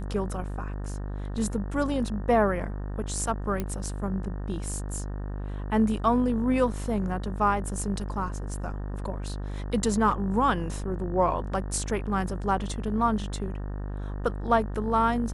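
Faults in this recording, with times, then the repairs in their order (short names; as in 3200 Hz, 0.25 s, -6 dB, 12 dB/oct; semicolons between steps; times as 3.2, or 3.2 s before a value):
buzz 50 Hz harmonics 37 -33 dBFS
3.6 pop -16 dBFS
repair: de-click; de-hum 50 Hz, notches 37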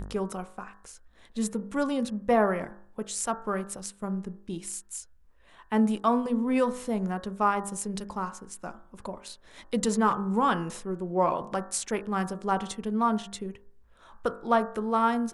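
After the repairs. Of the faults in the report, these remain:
none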